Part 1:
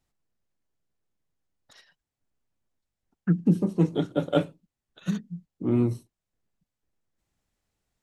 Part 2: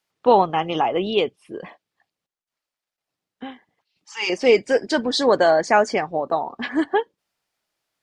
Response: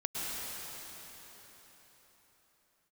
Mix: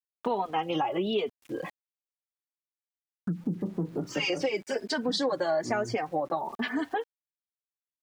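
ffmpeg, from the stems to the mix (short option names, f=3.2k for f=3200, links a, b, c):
-filter_complex "[0:a]acompressor=threshold=-25dB:ratio=2.5,lowpass=f=1.3k:w=0.5412,lowpass=f=1.3k:w=1.3066,volume=-2.5dB[a];[1:a]alimiter=limit=-13dB:level=0:latency=1:release=221,highpass=83,asplit=2[b][c];[c]adelay=3.1,afreqshift=1.1[d];[b][d]amix=inputs=2:normalize=1,volume=0dB,asplit=3[e][f][g];[e]atrim=end=1.7,asetpts=PTS-STARTPTS,afade=t=out:st=1.696:d=0.004:c=hsin[h];[f]atrim=start=1.7:end=3.59,asetpts=PTS-STARTPTS,volume=0[i];[g]atrim=start=3.59,asetpts=PTS-STARTPTS,afade=t=in:d=0.004:c=hsin[j];[h][i][j]concat=n=3:v=0:a=1,asplit=2[k][l];[l]apad=whole_len=353926[m];[a][m]sidechaincompress=threshold=-29dB:ratio=8:attack=16:release=260[n];[n][k]amix=inputs=2:normalize=0,acontrast=28,aeval=exprs='val(0)*gte(abs(val(0)),0.00447)':c=same,acompressor=threshold=-32dB:ratio=2"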